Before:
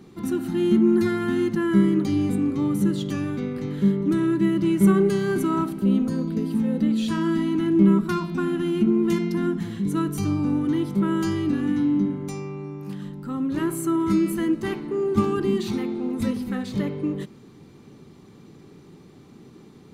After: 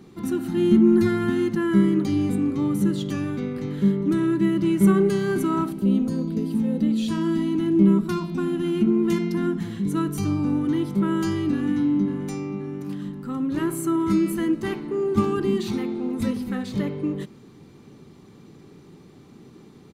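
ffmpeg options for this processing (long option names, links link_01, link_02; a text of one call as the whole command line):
ffmpeg -i in.wav -filter_complex "[0:a]asettb=1/sr,asplit=3[link_01][link_02][link_03];[link_01]atrim=end=0.574[link_04];[link_02]atrim=start=0.57:end=1.3,asetpts=PTS-STARTPTS,afade=type=in:duration=0.004:curve=qsin,afade=type=out:start_time=0.726:duration=0.004:curve=qsin,lowshelf=frequency=150:gain=8[link_05];[link_03]atrim=start=1.296[link_06];[link_04][link_05]acrossfade=duration=0.004:curve1=hsin:curve2=qsin[link_07];[link_07][link_06]acrossfade=duration=0.004:curve1=qsin:curve2=hsin,asettb=1/sr,asplit=3[link_08][link_09][link_10];[link_08]atrim=end=5.724[link_11];[link_09]atrim=start=5.72:end=8.64,asetpts=PTS-STARTPTS,afade=type=in:duration=0.004:curve=qsin,afade=type=out:start_time=2.916:duration=0.004:curve=qsin,equalizer=frequency=1500:width=1.2:gain=-5.5[link_12];[link_10]atrim=start=8.636[link_13];[link_11][link_12]acrossfade=duration=0.004:curve1=hsin:curve2=qsin[link_14];[link_14][link_13]acrossfade=duration=0.004:curve1=qsin:curve2=hsin,asplit=2[link_15][link_16];[link_16]afade=type=in:start_time=11.54:duration=0.01,afade=type=out:start_time=12.29:duration=0.01,aecho=0:1:530|1060|1590|2120|2650:0.298538|0.149269|0.0746346|0.0373173|0.0186586[link_17];[link_15][link_17]amix=inputs=2:normalize=0" out.wav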